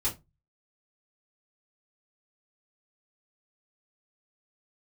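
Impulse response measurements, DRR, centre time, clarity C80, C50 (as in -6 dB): -7.5 dB, 18 ms, 23.5 dB, 14.0 dB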